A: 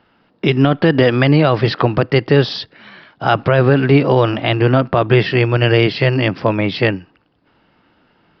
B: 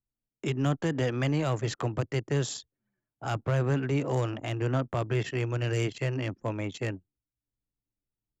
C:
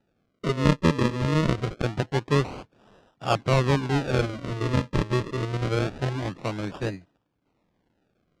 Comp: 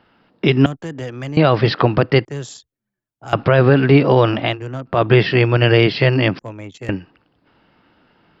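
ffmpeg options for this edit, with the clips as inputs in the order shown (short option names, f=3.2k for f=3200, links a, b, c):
-filter_complex "[1:a]asplit=4[a][b][c][d];[0:a]asplit=5[e][f][g][h][i];[e]atrim=end=0.662[j];[a]atrim=start=0.658:end=1.372[k];[f]atrim=start=1.368:end=2.252[l];[b]atrim=start=2.248:end=3.332[m];[g]atrim=start=3.328:end=4.6[n];[c]atrim=start=4.44:end=5.01[o];[h]atrim=start=4.85:end=6.392[p];[d]atrim=start=6.388:end=6.892[q];[i]atrim=start=6.888[r];[j][k]acrossfade=d=0.004:c1=hsin:c2=hsin[s];[s][l]acrossfade=d=0.004:c1=hsin:c2=hsin[t];[t][m]acrossfade=d=0.004:c1=hsin:c2=hsin[u];[u][n]acrossfade=d=0.004:c1=hsin:c2=hsin[v];[v][o]acrossfade=d=0.16:c1=tri:c2=tri[w];[w][p]acrossfade=d=0.16:c1=tri:c2=tri[x];[x][q]acrossfade=d=0.004:c1=hsin:c2=hsin[y];[y][r]acrossfade=d=0.004:c1=hsin:c2=hsin"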